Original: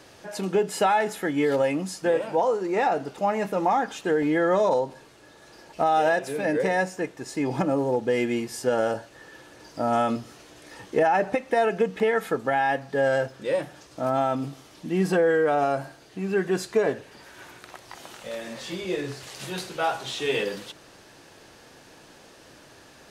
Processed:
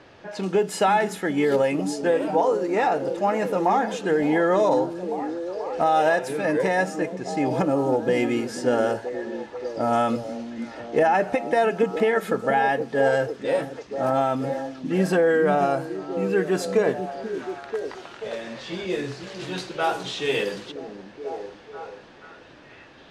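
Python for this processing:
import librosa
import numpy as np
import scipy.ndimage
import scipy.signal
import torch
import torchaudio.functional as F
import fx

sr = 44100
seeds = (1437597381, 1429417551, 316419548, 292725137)

y = fx.echo_stepped(x, sr, ms=486, hz=240.0, octaves=0.7, feedback_pct=70, wet_db=-5)
y = fx.env_lowpass(y, sr, base_hz=2900.0, full_db=-21.5)
y = y * 10.0 ** (1.5 / 20.0)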